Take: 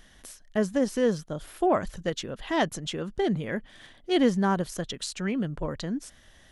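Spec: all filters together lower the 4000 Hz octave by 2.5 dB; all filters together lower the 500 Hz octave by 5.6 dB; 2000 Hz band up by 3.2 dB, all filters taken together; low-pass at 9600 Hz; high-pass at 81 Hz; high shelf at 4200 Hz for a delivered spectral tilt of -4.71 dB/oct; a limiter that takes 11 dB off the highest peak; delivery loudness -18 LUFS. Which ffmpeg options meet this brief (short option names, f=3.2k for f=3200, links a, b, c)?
-af "highpass=81,lowpass=9.6k,equalizer=f=500:t=o:g=-7.5,equalizer=f=2k:t=o:g=5,equalizer=f=4k:t=o:g=-7.5,highshelf=f=4.2k:g=4,volume=16.5dB,alimiter=limit=-7.5dB:level=0:latency=1"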